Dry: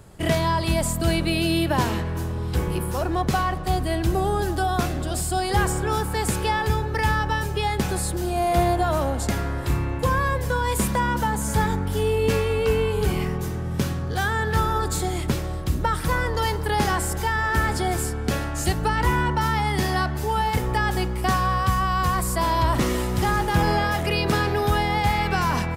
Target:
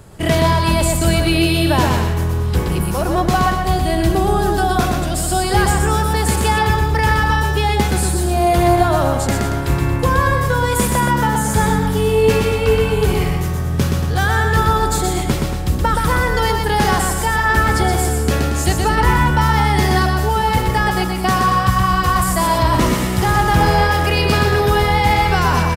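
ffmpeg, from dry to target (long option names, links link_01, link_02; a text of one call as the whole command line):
ffmpeg -i in.wav -af "aecho=1:1:123|230:0.631|0.316,volume=5.5dB" out.wav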